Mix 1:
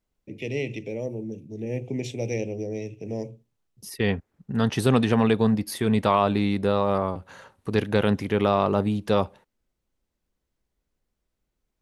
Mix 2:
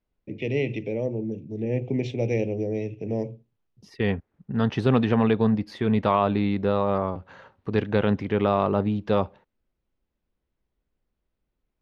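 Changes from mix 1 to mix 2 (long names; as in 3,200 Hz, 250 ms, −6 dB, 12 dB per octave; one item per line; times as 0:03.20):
first voice +4.0 dB
master: add high-frequency loss of the air 210 metres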